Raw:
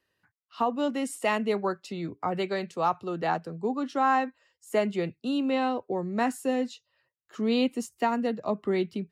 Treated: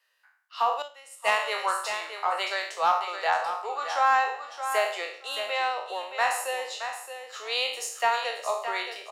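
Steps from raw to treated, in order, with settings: spectral trails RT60 0.58 s; Bessel high-pass 950 Hz, order 8; in parallel at -11 dB: sine folder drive 7 dB, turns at -12.5 dBFS; on the sum: feedback echo 0.621 s, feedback 16%, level -9 dB; 0.82–1.32 upward expander 2.5:1, over -32 dBFS

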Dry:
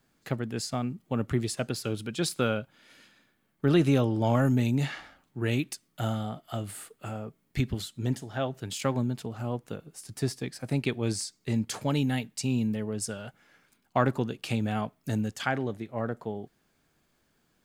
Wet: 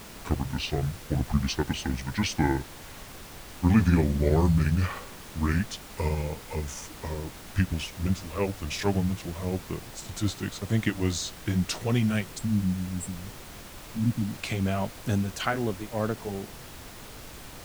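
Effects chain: gliding pitch shift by -10 st ending unshifted; spectral delete 12.38–14.34, 320–7300 Hz; added noise pink -47 dBFS; gain +3.5 dB

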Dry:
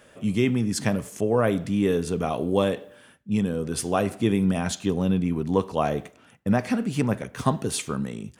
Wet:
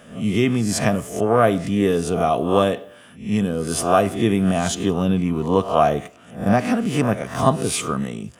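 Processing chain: spectral swells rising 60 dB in 0.42 s; notch 4300 Hz, Q 13; small resonant body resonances 690/1200/3000 Hz, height 9 dB; gain +3 dB

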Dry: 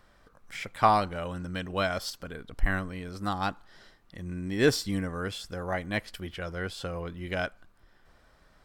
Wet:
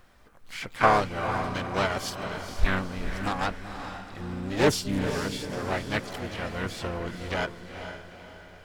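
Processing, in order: harmoniser -7 st -9 dB, +5 st -6 dB, +12 st -11 dB; requantised 12-bit, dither none; on a send: diffused feedback echo 0.463 s, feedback 46%, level -8.5 dB; on the sum: Doppler distortion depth 0.34 ms

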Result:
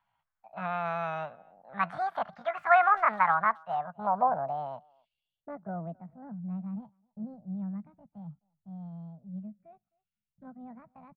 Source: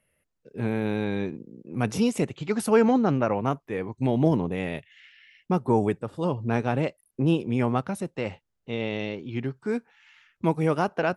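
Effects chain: low-pass sweep 900 Hz -> 130 Hz, 3.14–6.69; pitch shift +8 st; EQ curve 170 Hz 0 dB, 360 Hz -27 dB, 650 Hz +3 dB, 2200 Hz +10 dB, 5000 Hz +5 dB; speakerphone echo 0.26 s, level -27 dB; gain -8 dB

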